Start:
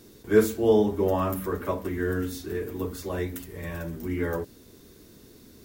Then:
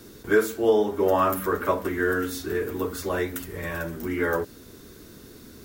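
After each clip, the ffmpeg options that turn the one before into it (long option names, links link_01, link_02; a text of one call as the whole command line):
ffmpeg -i in.wav -filter_complex "[0:a]acrossover=split=290|5400[link_01][link_02][link_03];[link_01]acompressor=threshold=-40dB:ratio=6[link_04];[link_04][link_02][link_03]amix=inputs=3:normalize=0,alimiter=limit=-15.5dB:level=0:latency=1:release=500,equalizer=frequency=1400:width_type=o:width=0.56:gain=6,volume=5dB" out.wav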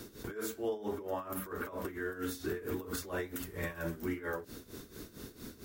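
ffmpeg -i in.wav -af "acompressor=threshold=-26dB:ratio=2.5,alimiter=level_in=3dB:limit=-24dB:level=0:latency=1:release=91,volume=-3dB,tremolo=f=4.4:d=0.81,volume=1dB" out.wav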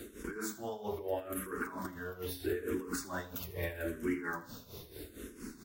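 ffmpeg -i in.wav -filter_complex "[0:a]aecho=1:1:80|160|240|320:0.158|0.0777|0.0381|0.0186,asplit=2[link_01][link_02];[link_02]afreqshift=-0.78[link_03];[link_01][link_03]amix=inputs=2:normalize=1,volume=3dB" out.wav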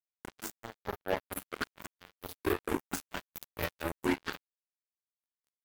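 ffmpeg -i in.wav -af "acrusher=bits=4:mix=0:aa=0.5,volume=3.5dB" out.wav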